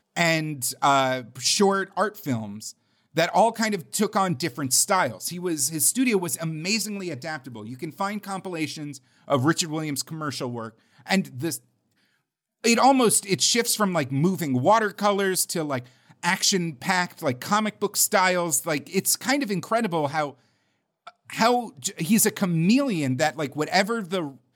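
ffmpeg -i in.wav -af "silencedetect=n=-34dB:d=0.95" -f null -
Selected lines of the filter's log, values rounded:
silence_start: 11.57
silence_end: 12.64 | silence_duration: 1.07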